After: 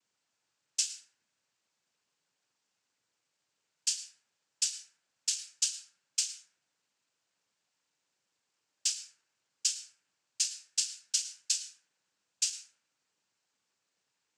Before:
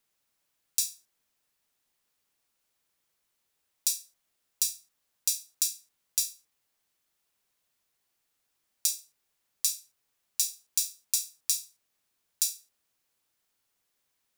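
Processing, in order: noise-vocoded speech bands 8; band-passed feedback delay 81 ms, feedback 80%, band-pass 1.2 kHz, level -23.5 dB; reverberation RT60 0.70 s, pre-delay 97 ms, DRR 10 dB

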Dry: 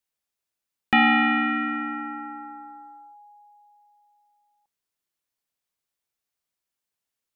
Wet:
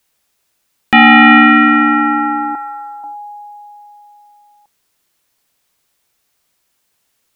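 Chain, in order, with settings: 2.55–3.04 s: high-pass 930 Hz 12 dB/octave; in parallel at +1 dB: compression, threshold -31 dBFS, peak gain reduction 14.5 dB; on the sum: loudness maximiser +15 dB; trim -1 dB

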